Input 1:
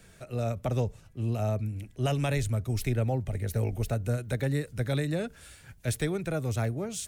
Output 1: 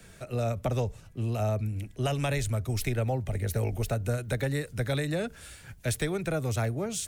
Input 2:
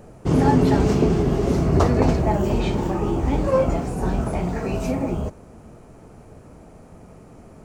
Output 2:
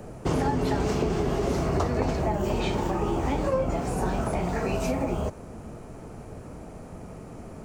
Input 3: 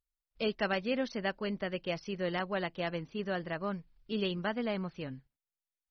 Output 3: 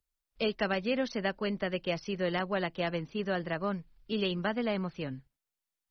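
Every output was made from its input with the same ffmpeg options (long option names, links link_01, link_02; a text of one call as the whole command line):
ffmpeg -i in.wav -filter_complex "[0:a]acrossover=split=84|460[link_01][link_02][link_03];[link_01]acompressor=threshold=-37dB:ratio=4[link_04];[link_02]acompressor=threshold=-34dB:ratio=4[link_05];[link_03]acompressor=threshold=-32dB:ratio=4[link_06];[link_04][link_05][link_06]amix=inputs=3:normalize=0,volume=3.5dB" out.wav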